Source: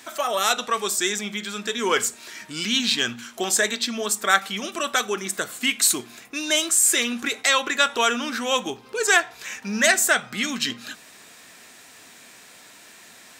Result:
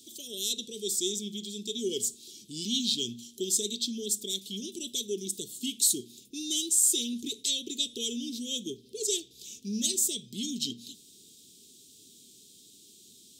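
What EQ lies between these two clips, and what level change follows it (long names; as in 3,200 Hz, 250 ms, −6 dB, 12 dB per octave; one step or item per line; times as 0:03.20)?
Chebyshev band-stop filter 410–3,300 Hz, order 4
−5.0 dB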